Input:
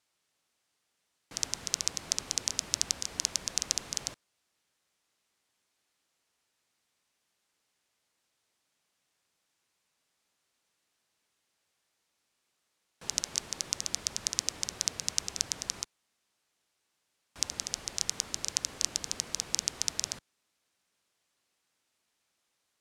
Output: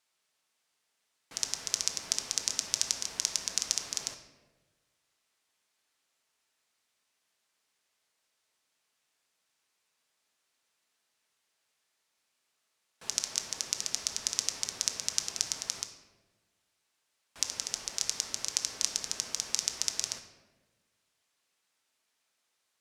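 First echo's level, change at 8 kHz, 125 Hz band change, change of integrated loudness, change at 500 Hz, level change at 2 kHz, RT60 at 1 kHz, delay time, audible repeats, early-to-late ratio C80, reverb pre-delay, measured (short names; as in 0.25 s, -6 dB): none, +0.5 dB, -6.5 dB, +0.5 dB, -1.5 dB, +0.5 dB, 1.0 s, none, none, 10.5 dB, 5 ms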